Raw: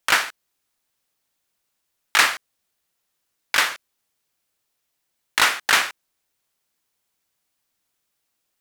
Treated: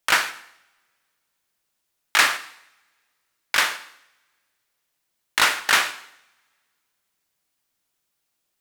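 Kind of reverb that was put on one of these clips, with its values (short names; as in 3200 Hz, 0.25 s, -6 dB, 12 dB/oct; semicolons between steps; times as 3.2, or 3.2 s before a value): two-slope reverb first 0.71 s, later 2.1 s, from -26 dB, DRR 10 dB; gain -1 dB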